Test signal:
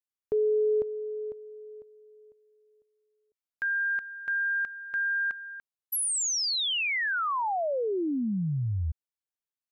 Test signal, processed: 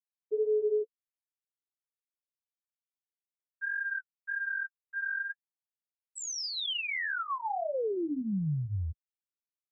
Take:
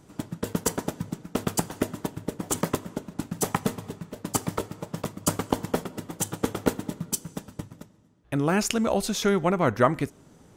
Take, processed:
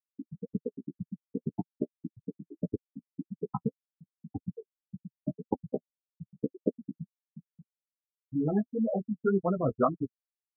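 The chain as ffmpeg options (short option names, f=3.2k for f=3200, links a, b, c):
-af "afftfilt=real='re*gte(hypot(re,im),0.316)':imag='im*gte(hypot(re,im),0.316)':win_size=1024:overlap=0.75,flanger=delay=9.5:depth=5.3:regen=-8:speed=1.8:shape=sinusoidal"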